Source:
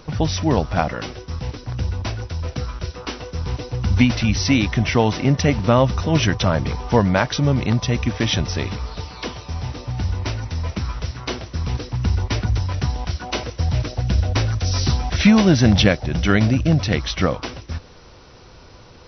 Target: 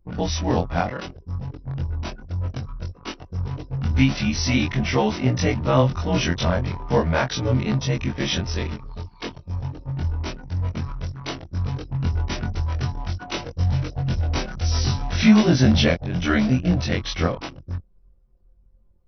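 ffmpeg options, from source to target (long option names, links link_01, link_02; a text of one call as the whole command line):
ffmpeg -i in.wav -af "afftfilt=real='re':imag='-im':win_size=2048:overlap=0.75,anlmdn=3.98,volume=1.5dB" out.wav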